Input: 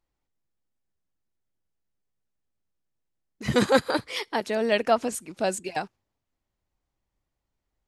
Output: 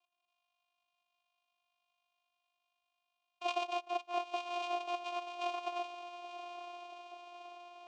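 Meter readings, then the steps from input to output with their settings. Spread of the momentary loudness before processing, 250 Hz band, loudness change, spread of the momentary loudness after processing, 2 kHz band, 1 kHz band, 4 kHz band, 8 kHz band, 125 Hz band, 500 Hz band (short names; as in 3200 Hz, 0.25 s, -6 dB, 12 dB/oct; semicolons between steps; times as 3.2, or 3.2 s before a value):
12 LU, -21.5 dB, -13.5 dB, 13 LU, -13.0 dB, -6.5 dB, -10.5 dB, -21.0 dB, under -40 dB, -14.5 dB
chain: FFT order left unsorted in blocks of 128 samples; gate -44 dBFS, range -49 dB; small resonant body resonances 250/2900 Hz, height 8 dB; compressor 5:1, threshold -31 dBFS, peak gain reduction 15.5 dB; inverted band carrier 3700 Hz; careless resampling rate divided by 6×, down none, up zero stuff; upward compressor, threshold -40 dBFS; low shelf 320 Hz -11 dB; on a send: diffused feedback echo 0.972 s, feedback 60%, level -9 dB; on the sum: vocoder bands 4, saw 351 Hz; vowel filter a; gain +12.5 dB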